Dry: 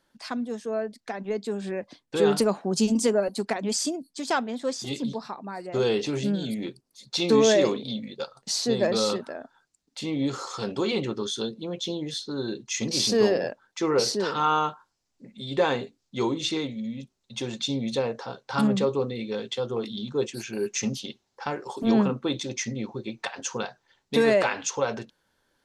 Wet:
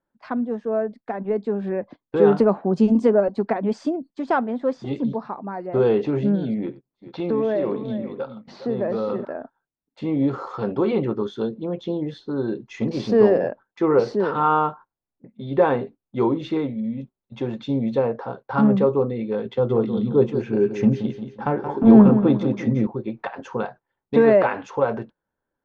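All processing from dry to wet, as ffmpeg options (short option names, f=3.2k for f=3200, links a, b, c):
-filter_complex "[0:a]asettb=1/sr,asplit=3[a][b][c];[a]atrim=end=6.604[d];[b]atrim=start=6.6:end=9.25,asetpts=PTS-STARTPTS,afade=t=in:d=0.004:c=qsin,afade=t=out:st=2.646:d=0.004:c=qsin,lowpass=3.8k,acompressor=threshold=-28dB:ratio=2.5:attack=3.2:release=140:knee=1:detection=peak,aecho=1:1:91|415:0.119|0.251,atrim=end_sample=116865[e];[c]atrim=start=9.246[f];[d][e]acrossfade=d=0.004:c1=hsin:c2=qsin[g];[g][f]acrossfade=d=0.004:c1=qsin:c2=hsin,asettb=1/sr,asplit=3[h][i][j];[h]atrim=end=19.454[k];[i]atrim=start=19.45:end=22.87,asetpts=PTS-STARTPTS,afade=t=in:d=0.004:c=qsin,afade=t=out:st=3.416:d=0.004:c=qsin,lowshelf=f=360:g=7,aecho=1:1:176|352|528|704|880:0.316|0.145|0.0669|0.0308|0.0142,atrim=end_sample=150822[l];[j]atrim=start=22.866[m];[k][l]acrossfade=d=0.004:c1=hsin:c2=qsin[n];[n][m]acrossfade=d=0.004:c1=qsin:c2=hsin,agate=range=-15dB:threshold=-44dB:ratio=16:detection=peak,lowpass=1.3k,volume=6dB"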